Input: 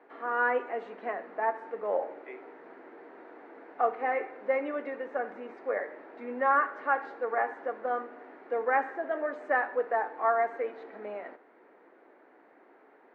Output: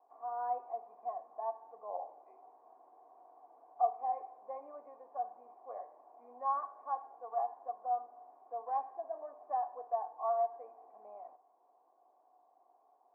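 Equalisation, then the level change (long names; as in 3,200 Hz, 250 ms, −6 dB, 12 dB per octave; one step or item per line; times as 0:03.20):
formant resonators in series a
high-shelf EQ 2,700 Hz −7.5 dB
notch filter 1,300 Hz, Q 11
+1.0 dB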